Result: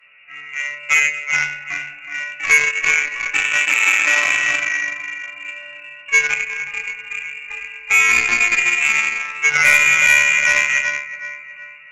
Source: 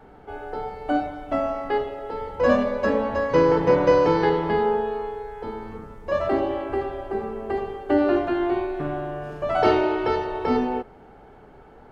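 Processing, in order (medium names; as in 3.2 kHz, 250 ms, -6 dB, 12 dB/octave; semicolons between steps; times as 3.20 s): on a send: two-band feedback delay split 360 Hz, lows 96 ms, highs 372 ms, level -7 dB; on the sum: frequency inversion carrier 2.8 kHz; chord resonator D3 minor, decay 0.44 s; de-hum 398.7 Hz, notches 37; Chebyshev shaper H 2 -31 dB, 7 -19 dB, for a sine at -20.5 dBFS; 3.58–4.26 s: brick-wall FIR high-pass 180 Hz; loudness maximiser +30 dB; trim -1.5 dB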